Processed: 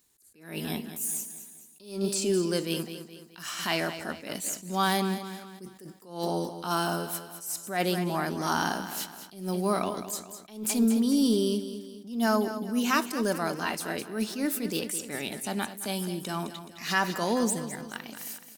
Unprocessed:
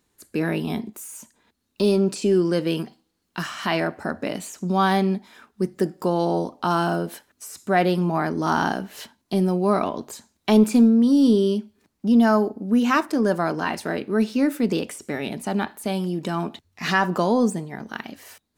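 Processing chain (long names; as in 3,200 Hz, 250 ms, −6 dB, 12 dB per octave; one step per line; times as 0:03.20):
first-order pre-emphasis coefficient 0.8
repeating echo 212 ms, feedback 45%, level −11.5 dB
level that may rise only so fast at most 120 dB per second
level +6.5 dB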